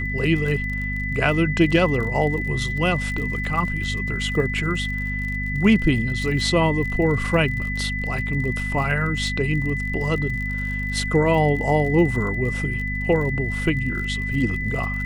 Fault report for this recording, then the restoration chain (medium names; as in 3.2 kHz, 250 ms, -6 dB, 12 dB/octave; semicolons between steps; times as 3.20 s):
crackle 44 per s -30 dBFS
hum 50 Hz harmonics 5 -28 dBFS
whine 2 kHz -27 dBFS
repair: de-click; de-hum 50 Hz, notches 5; band-stop 2 kHz, Q 30